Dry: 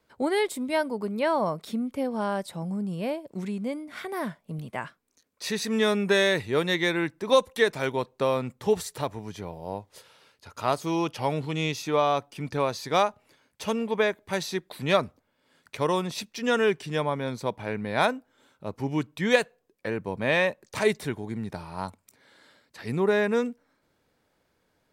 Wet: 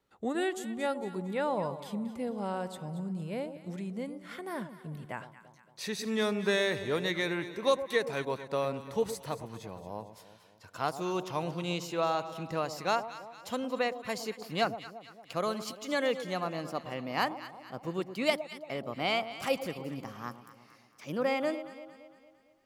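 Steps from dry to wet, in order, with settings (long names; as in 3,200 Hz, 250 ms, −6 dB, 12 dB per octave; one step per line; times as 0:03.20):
gliding playback speed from 88% → 132%
delay that swaps between a low-pass and a high-pass 114 ms, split 940 Hz, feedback 69%, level −10.5 dB
level −6.5 dB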